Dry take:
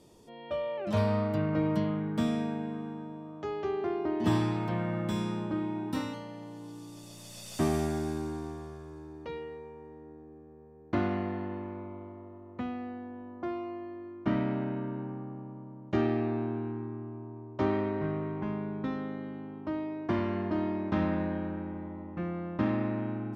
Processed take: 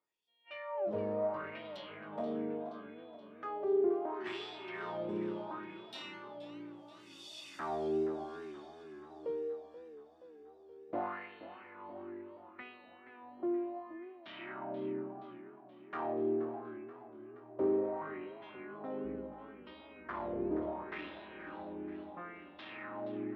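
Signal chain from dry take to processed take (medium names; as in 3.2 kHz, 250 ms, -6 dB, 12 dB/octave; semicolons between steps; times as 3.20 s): 19.04–20.83 s: octave divider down 2 oct, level +3 dB; spectral noise reduction 21 dB; saturation -26.5 dBFS, distortion -13 dB; wah-wah 0.72 Hz 390–3600 Hz, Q 3.4; modulated delay 477 ms, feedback 62%, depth 121 cents, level -14 dB; trim +6 dB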